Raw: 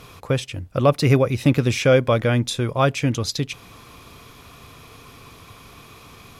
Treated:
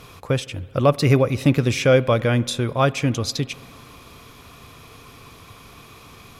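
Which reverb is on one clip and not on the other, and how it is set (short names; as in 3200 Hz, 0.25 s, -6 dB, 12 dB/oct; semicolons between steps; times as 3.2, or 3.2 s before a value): spring tank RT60 2.4 s, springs 54 ms, chirp 50 ms, DRR 19.5 dB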